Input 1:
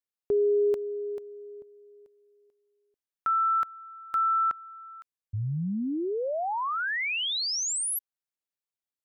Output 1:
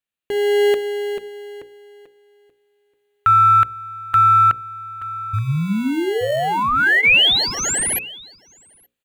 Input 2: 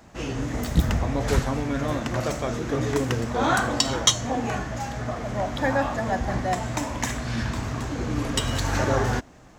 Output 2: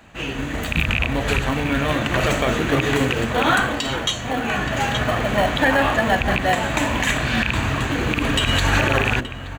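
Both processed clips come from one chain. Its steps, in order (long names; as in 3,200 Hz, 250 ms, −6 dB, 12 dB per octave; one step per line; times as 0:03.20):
loose part that buzzes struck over −21 dBFS, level −11 dBFS
notch filter 2,100 Hz, Q 12
slap from a distant wall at 150 metres, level −14 dB
in parallel at −10.5 dB: decimation without filtering 36×
on the sum: automatic gain control gain up to 8 dB
parametric band 2,500 Hz +11 dB 1.5 octaves
mains-hum notches 60/120/180/240/300/360/420/480/540 Hz
brickwall limiter −7 dBFS
parametric band 5,300 Hz −13 dB 0.29 octaves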